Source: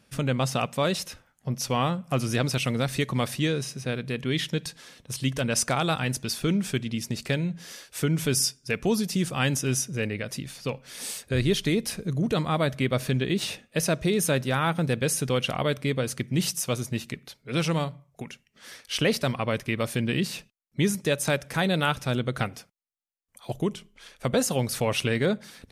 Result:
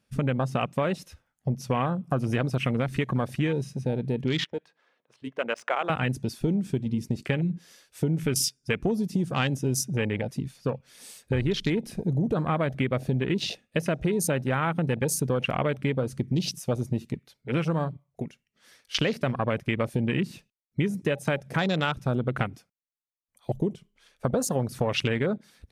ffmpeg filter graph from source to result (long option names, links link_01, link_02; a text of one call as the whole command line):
ffmpeg -i in.wav -filter_complex "[0:a]asettb=1/sr,asplit=3[link_01][link_02][link_03];[link_01]atrim=end=4.444[link_04];[link_02]atrim=start=4.44:end=5.9,asetpts=PTS-STARTPTS,afade=type=in:duration=0.004:curve=qsin,afade=type=out:start_time=1.456:duration=0.004:curve=qsin,highpass=520,equalizer=frequency=4600:width=0.86:gain=-3,adynamicsmooth=sensitivity=2:basefreq=2000[link_05];[link_03]atrim=start=5.896[link_06];[link_04][link_05]acrossfade=duration=0.004:curve1=hsin:curve2=qsin[link_07];[link_07][link_06]acrossfade=duration=0.004:curve1=qsin:curve2=hsin,afwtdn=0.0224,acompressor=threshold=-27dB:ratio=6,volume=5dB" out.wav